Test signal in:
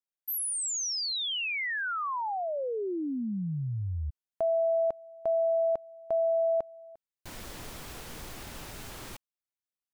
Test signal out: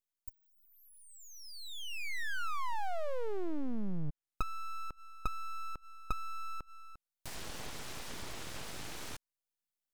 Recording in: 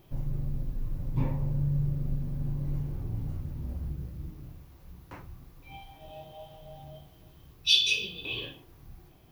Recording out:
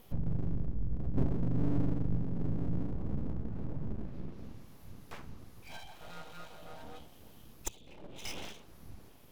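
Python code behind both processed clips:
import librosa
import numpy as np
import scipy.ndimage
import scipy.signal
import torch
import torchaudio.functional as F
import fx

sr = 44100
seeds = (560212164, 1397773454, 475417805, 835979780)

y = fx.env_lowpass_down(x, sr, base_hz=340.0, full_db=-27.0)
y = np.abs(y)
y = fx.high_shelf(y, sr, hz=7700.0, db=9.0)
y = y * librosa.db_to_amplitude(1.0)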